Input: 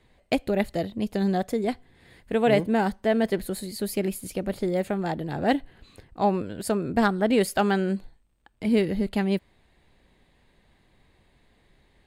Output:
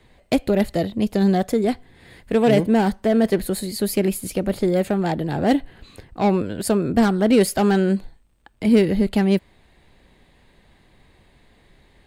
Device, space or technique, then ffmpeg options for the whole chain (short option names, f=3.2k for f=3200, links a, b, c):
one-band saturation: -filter_complex "[0:a]acrossover=split=470|4200[a][b][c];[b]asoftclip=type=tanh:threshold=-27.5dB[d];[a][d][c]amix=inputs=3:normalize=0,volume=7dB"